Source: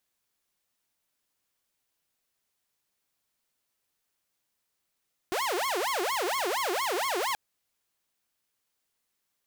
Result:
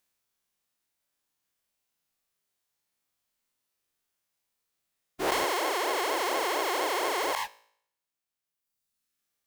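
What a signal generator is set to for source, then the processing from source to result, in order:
siren wail 348–1,100 Hz 4.3 per second saw −24.5 dBFS 2.03 s
every bin's largest magnitude spread in time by 240 ms
reverb reduction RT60 1.6 s
tuned comb filter 55 Hz, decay 0.65 s, harmonics all, mix 40%

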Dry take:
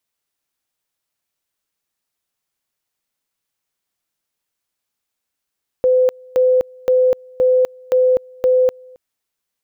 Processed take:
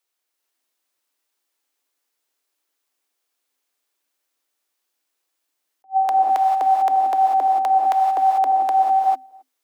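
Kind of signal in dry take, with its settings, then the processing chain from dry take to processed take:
tone at two levels in turn 509 Hz −10 dBFS, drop 28 dB, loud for 0.25 s, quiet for 0.27 s, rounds 6
frequency shifter +260 Hz
reverb whose tail is shaped and stops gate 470 ms rising, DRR 0 dB
level that may rise only so fast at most 440 dB per second

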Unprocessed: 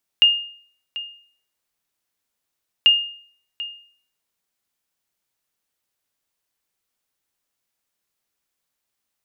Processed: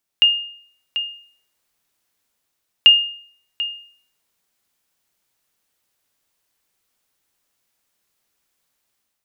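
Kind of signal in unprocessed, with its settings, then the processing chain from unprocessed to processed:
ping with an echo 2,830 Hz, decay 0.53 s, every 2.64 s, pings 2, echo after 0.74 s, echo −16.5 dB −6.5 dBFS
automatic gain control gain up to 7 dB

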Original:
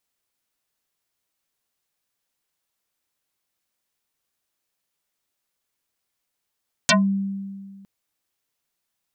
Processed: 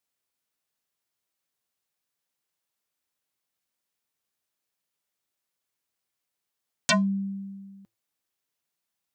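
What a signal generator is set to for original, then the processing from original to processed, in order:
two-operator FM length 0.96 s, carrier 196 Hz, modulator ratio 4.28, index 11, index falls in 0.16 s exponential, decay 1.85 s, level −12 dB
high-pass filter 62 Hz
flanger 0.26 Hz, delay 4.3 ms, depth 1.2 ms, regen −89%

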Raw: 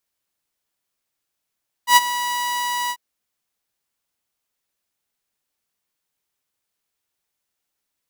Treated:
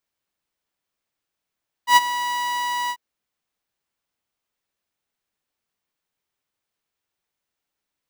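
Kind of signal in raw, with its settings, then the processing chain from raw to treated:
note with an ADSR envelope saw 974 Hz, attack 94 ms, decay 31 ms, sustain −14.5 dB, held 1.03 s, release 63 ms −4.5 dBFS
parametric band 14,000 Hz −8.5 dB 1.8 octaves

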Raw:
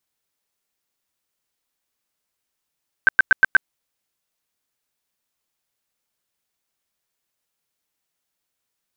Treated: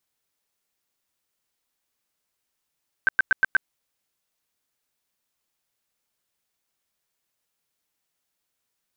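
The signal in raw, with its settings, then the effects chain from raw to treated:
tone bursts 1,550 Hz, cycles 26, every 0.12 s, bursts 5, −7.5 dBFS
brickwall limiter −13.5 dBFS

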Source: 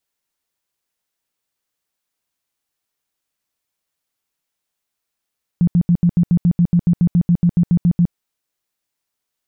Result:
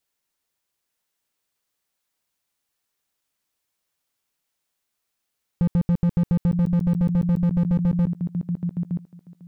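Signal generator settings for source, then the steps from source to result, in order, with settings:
tone bursts 173 Hz, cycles 11, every 0.14 s, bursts 18, −9.5 dBFS
on a send: feedback echo with a high-pass in the loop 919 ms, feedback 18%, high-pass 220 Hz, level −7 dB
on the sum: slew-rate limiting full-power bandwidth 24 Hz

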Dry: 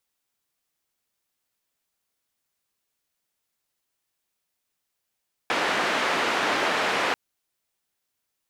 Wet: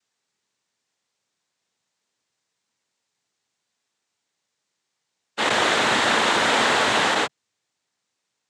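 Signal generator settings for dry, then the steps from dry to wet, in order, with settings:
band-limited noise 280–2,000 Hz, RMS −24.5 dBFS 1.64 s
every bin's largest magnitude spread in time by 240 ms
cochlear-implant simulation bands 6

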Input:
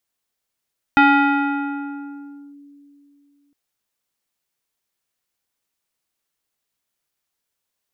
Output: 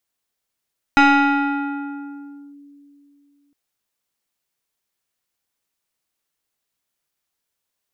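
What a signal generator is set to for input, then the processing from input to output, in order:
two-operator FM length 2.56 s, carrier 285 Hz, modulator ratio 3.92, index 1.5, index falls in 1.58 s linear, decay 2.95 s, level −8 dB
stylus tracing distortion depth 0.049 ms

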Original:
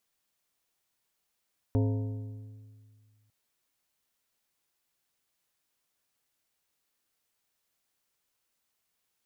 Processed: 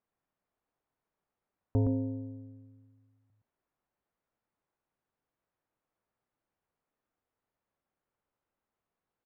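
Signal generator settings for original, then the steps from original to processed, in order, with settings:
struck metal plate, lowest mode 106 Hz, modes 7, decay 2.06 s, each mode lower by 5 dB, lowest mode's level −22.5 dB
low-pass filter 1,200 Hz 12 dB per octave
single-tap delay 117 ms −3.5 dB

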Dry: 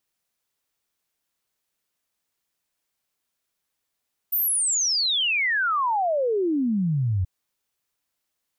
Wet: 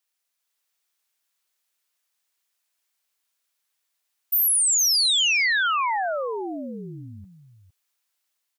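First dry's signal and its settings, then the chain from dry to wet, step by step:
exponential sine sweep 15,000 Hz → 87 Hz 2.93 s −20 dBFS
high-pass filter 1,200 Hz 6 dB per octave
automatic gain control gain up to 3 dB
single-tap delay 457 ms −12 dB

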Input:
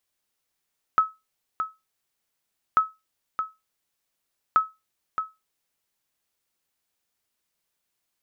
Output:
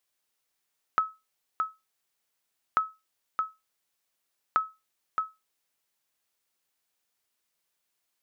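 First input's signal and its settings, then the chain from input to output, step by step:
ping with an echo 1,290 Hz, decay 0.22 s, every 1.79 s, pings 3, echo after 0.62 s, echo −8.5 dB −10.5 dBFS
downward compressor, threshold −22 dBFS
low-shelf EQ 250 Hz −7 dB

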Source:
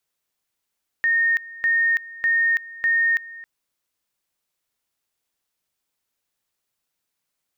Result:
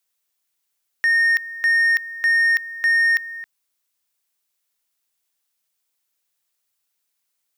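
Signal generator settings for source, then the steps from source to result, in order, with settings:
tone at two levels in turn 1,840 Hz −16 dBFS, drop 19.5 dB, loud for 0.33 s, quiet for 0.27 s, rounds 4
spectral tilt +2 dB per octave
leveller curve on the samples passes 1

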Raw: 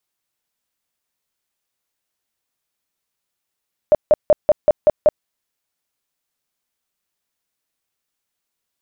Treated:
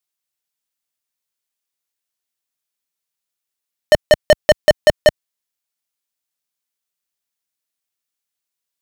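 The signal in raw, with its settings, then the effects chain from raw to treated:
tone bursts 606 Hz, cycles 17, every 0.19 s, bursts 7, −7 dBFS
high-pass filter 61 Hz
high-shelf EQ 2,000 Hz +7.5 dB
leveller curve on the samples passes 5

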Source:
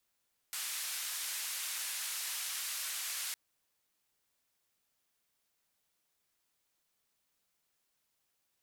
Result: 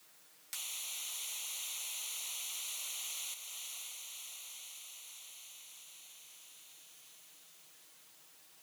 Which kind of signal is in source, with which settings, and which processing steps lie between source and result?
band-limited noise 1,400–13,000 Hz, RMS −39 dBFS 2.81 s
flanger swept by the level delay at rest 6.7 ms, full sweep at −40.5 dBFS
on a send: feedback delay with all-pass diffusion 556 ms, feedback 52%, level −8 dB
on the sum: multiband upward and downward compressor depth 70%

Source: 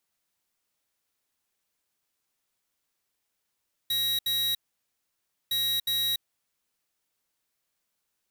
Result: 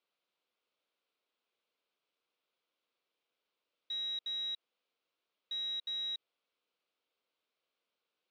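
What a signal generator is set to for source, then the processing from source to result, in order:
beeps in groups square 3,840 Hz, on 0.29 s, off 0.07 s, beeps 2, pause 0.96 s, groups 2, −27 dBFS
brickwall limiter −33.5 dBFS
loudspeaker in its box 310–3,900 Hz, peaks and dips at 480 Hz +5 dB, 840 Hz −5 dB, 1,800 Hz −10 dB

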